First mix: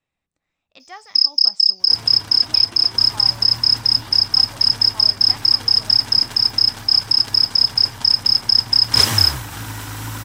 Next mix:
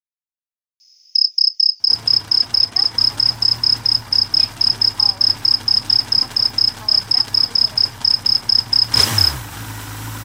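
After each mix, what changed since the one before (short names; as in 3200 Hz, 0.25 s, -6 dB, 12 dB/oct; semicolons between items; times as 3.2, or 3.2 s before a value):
speech: entry +1.85 s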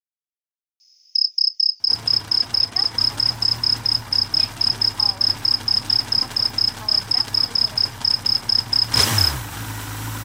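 first sound -4.0 dB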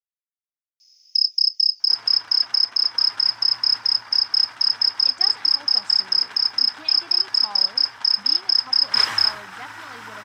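speech: entry +2.45 s; second sound: add band-pass 1500 Hz, Q 1.2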